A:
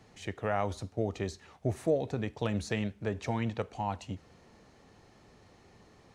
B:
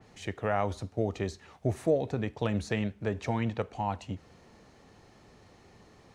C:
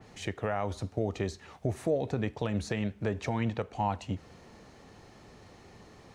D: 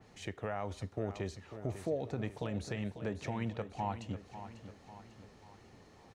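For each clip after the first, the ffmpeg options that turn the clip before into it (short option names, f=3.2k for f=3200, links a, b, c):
-af "adynamicequalizer=threshold=0.002:dfrequency=3400:dqfactor=0.7:tfrequency=3400:tqfactor=0.7:attack=5:release=100:ratio=0.375:range=2.5:mode=cutabove:tftype=highshelf,volume=2dB"
-af "alimiter=limit=-22dB:level=0:latency=1:release=304,volume=3.5dB"
-af "aecho=1:1:545|1090|1635|2180|2725:0.266|0.133|0.0665|0.0333|0.0166,volume=-6.5dB"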